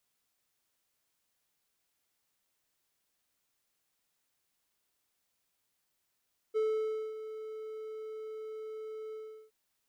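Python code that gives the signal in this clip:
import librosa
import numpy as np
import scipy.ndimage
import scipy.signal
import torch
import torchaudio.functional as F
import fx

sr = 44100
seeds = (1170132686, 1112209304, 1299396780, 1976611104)

y = fx.adsr_tone(sr, wave='triangle', hz=436.0, attack_ms=28.0, decay_ms=567.0, sustain_db=-13.0, held_s=2.59, release_ms=379.0, level_db=-24.5)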